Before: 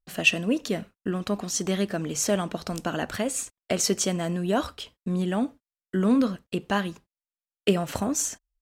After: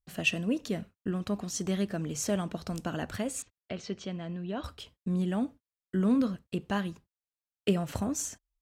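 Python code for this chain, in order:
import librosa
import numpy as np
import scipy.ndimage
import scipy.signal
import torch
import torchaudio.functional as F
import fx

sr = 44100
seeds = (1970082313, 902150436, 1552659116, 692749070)

y = fx.ladder_lowpass(x, sr, hz=4700.0, resonance_pct=25, at=(3.42, 4.64))
y = fx.peak_eq(y, sr, hz=90.0, db=9.0, octaves=2.3)
y = y * librosa.db_to_amplitude(-7.5)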